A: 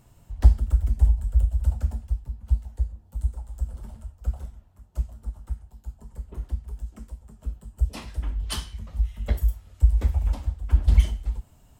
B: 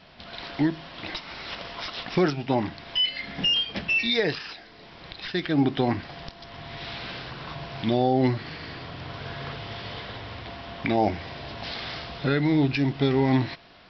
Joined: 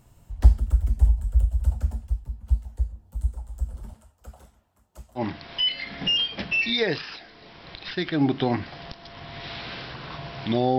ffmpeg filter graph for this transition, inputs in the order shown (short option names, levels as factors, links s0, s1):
-filter_complex "[0:a]asettb=1/sr,asplit=3[s0][s1][s2];[s0]atrim=end=3.934[s3];[s1]atrim=start=3.93:end=5.23,asetpts=PTS-STARTPTS,afade=t=in:d=0.004:c=qsin,afade=t=out:st=1.296:d=0.004:c=qsin,highpass=f=440:p=1[s4];[s2]atrim=start=5.226[s5];[s3][s4]acrossfade=d=0.004:c1=hsin:c2=qsin[s6];[s6][s5]acrossfade=d=0.004:c1=qsin:c2=hsin,apad=whole_dur=10.78,atrim=end=10.78,atrim=end=5.23,asetpts=PTS-STARTPTS[s7];[1:a]atrim=start=2.52:end=8.15,asetpts=PTS-STARTPTS[s8];[s7][s8]acrossfade=d=0.08:c1=tri:c2=tri"